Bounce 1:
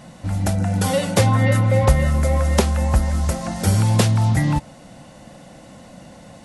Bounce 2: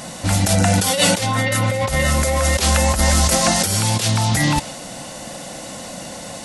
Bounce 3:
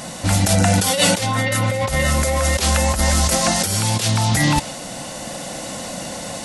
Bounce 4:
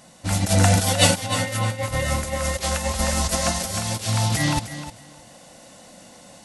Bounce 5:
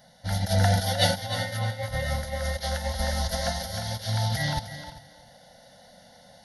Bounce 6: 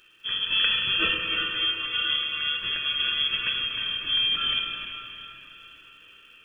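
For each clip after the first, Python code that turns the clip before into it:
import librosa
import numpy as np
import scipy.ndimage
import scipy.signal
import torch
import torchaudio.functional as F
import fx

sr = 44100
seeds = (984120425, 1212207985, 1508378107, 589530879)

y1 = fx.bass_treble(x, sr, bass_db=-7, treble_db=9)
y1 = fx.over_compress(y1, sr, threshold_db=-25.0, ratio=-1.0)
y1 = fx.dynamic_eq(y1, sr, hz=3100.0, q=0.74, threshold_db=-45.0, ratio=4.0, max_db=6)
y1 = y1 * 10.0 ** (7.0 / 20.0)
y2 = fx.rider(y1, sr, range_db=4, speed_s=2.0)
y2 = y2 * 10.0 ** (-1.0 / 20.0)
y3 = fx.echo_feedback(y2, sr, ms=308, feedback_pct=32, wet_db=-5)
y3 = fx.upward_expand(y3, sr, threshold_db=-24.0, expansion=2.5)
y4 = fx.fixed_phaser(y3, sr, hz=1700.0, stages=8)
y4 = y4 + 10.0 ** (-17.5 / 20.0) * np.pad(y4, (int(393 * sr / 1000.0), 0))[:len(y4)]
y4 = y4 * 10.0 ** (-3.0 / 20.0)
y5 = fx.freq_invert(y4, sr, carrier_hz=3300)
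y5 = fx.dmg_crackle(y5, sr, seeds[0], per_s=360.0, level_db=-55.0)
y5 = fx.rev_plate(y5, sr, seeds[1], rt60_s=3.7, hf_ratio=0.85, predelay_ms=0, drr_db=2.0)
y5 = y5 * 10.0 ** (-1.0 / 20.0)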